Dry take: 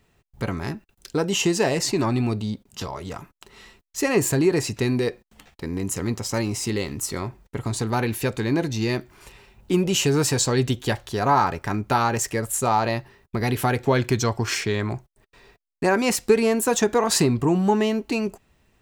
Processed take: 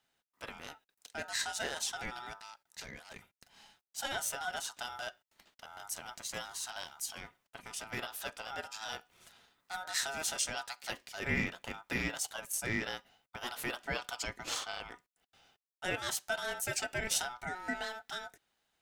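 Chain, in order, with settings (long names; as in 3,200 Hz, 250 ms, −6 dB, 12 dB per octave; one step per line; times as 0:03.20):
high-pass filter 1,100 Hz 6 dB per octave
ring modulation 1,100 Hz
level −7 dB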